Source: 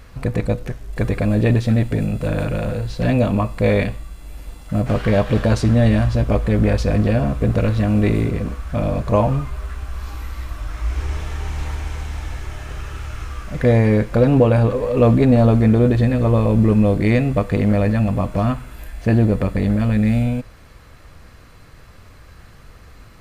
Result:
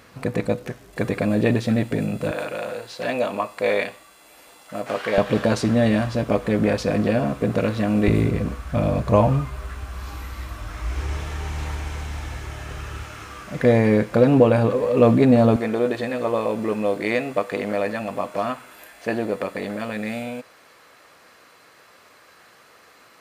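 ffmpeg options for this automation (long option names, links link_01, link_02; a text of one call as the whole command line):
ffmpeg -i in.wav -af "asetnsamples=nb_out_samples=441:pad=0,asendcmd='2.31 highpass f 490;5.18 highpass f 190;8.08 highpass f 70;13.04 highpass f 160;15.56 highpass f 430',highpass=180" out.wav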